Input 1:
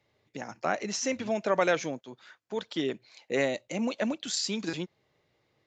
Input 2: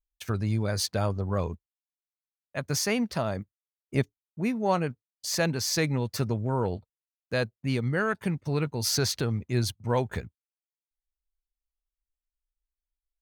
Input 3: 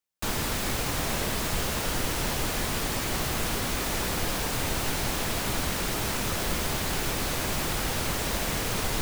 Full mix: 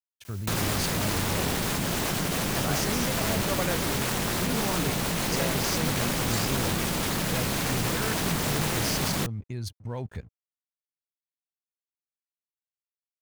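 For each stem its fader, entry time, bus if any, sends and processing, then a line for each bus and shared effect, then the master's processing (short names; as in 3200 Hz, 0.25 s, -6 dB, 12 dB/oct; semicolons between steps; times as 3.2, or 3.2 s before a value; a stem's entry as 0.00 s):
-6.5 dB, 2.00 s, no send, dry
-2.5 dB, 0.00 s, no send, low shelf 180 Hz +9 dB; level quantiser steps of 15 dB; crossover distortion -58 dBFS
0.0 dB, 0.25 s, no send, ring modulator 170 Hz; fast leveller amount 100%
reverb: off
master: dry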